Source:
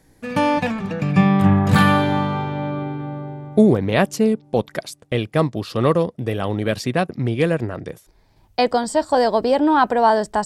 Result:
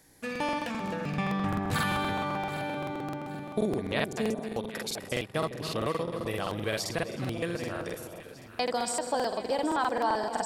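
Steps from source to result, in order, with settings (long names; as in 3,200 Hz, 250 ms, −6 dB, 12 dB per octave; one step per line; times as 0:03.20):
feedback delay that plays each chunk backwards 132 ms, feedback 51%, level −11 dB
spectral tilt +2 dB per octave
downward compressor 2 to 1, threshold −29 dBFS, peak gain reduction 10.5 dB
delay that swaps between a low-pass and a high-pass 388 ms, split 930 Hz, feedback 61%, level −9.5 dB
regular buffer underruns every 0.13 s, samples 2,048, repeat, from 0:00.31
level −3.5 dB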